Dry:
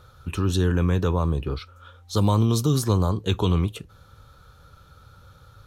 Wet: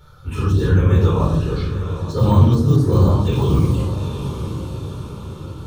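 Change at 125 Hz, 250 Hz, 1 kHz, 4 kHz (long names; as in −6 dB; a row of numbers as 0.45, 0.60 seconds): +8.0, +5.5, +4.5, −1.0 decibels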